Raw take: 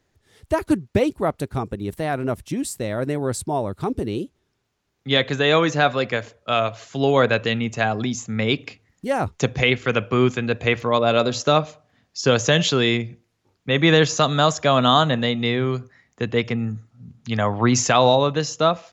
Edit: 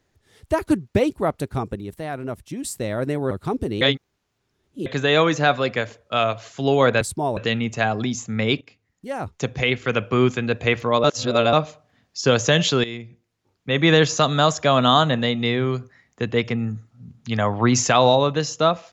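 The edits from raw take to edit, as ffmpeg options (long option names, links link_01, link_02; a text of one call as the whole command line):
ffmpeg -i in.wav -filter_complex "[0:a]asplit=12[link_01][link_02][link_03][link_04][link_05][link_06][link_07][link_08][link_09][link_10][link_11][link_12];[link_01]atrim=end=1.812[link_13];[link_02]atrim=start=1.808:end=2.642,asetpts=PTS-STARTPTS,volume=-5.5dB[link_14];[link_03]atrim=start=2.638:end=3.312[link_15];[link_04]atrim=start=3.668:end=4.172[link_16];[link_05]atrim=start=4.168:end=5.222,asetpts=PTS-STARTPTS,areverse[link_17];[link_06]atrim=start=5.218:end=7.372[link_18];[link_07]atrim=start=3.308:end=3.672[link_19];[link_08]atrim=start=7.368:end=8.61,asetpts=PTS-STARTPTS,afade=type=out:start_time=1.238:duration=0.004:curve=hsin:silence=0.177828[link_20];[link_09]atrim=start=8.61:end=11.042,asetpts=PTS-STARTPTS,afade=type=in:duration=1.54:silence=0.177828[link_21];[link_10]atrim=start=11.038:end=11.532,asetpts=PTS-STARTPTS,areverse[link_22];[link_11]atrim=start=11.528:end=12.84,asetpts=PTS-STARTPTS,afade=type=out:start_time=1.308:duration=0.004:curve=hsin:silence=0.188365[link_23];[link_12]atrim=start=12.84,asetpts=PTS-STARTPTS,afade=type=in:duration=1.09:silence=0.188365[link_24];[link_13][link_14]acrossfade=duration=0.004:curve1=hsin:curve2=hsin[link_25];[link_25][link_15]acrossfade=duration=0.004:curve1=hsin:curve2=hsin[link_26];[link_26][link_16]acrossfade=duration=0.004:curve1=hsin:curve2=hsin[link_27];[link_27][link_17]acrossfade=duration=0.004:curve1=hsin:curve2=hsin[link_28];[link_28][link_18]acrossfade=duration=0.004:curve1=hsin:curve2=hsin[link_29];[link_29][link_19]acrossfade=duration=0.004:curve1=hsin:curve2=hsin[link_30];[link_20][link_21]concat=n=2:v=0:a=1[link_31];[link_30][link_31]acrossfade=duration=0.004:curve1=hsin:curve2=hsin[link_32];[link_32][link_22]acrossfade=duration=0.004:curve1=hsin:curve2=hsin[link_33];[link_23][link_24]concat=n=2:v=0:a=1[link_34];[link_33][link_34]acrossfade=duration=0.004:curve1=hsin:curve2=hsin" out.wav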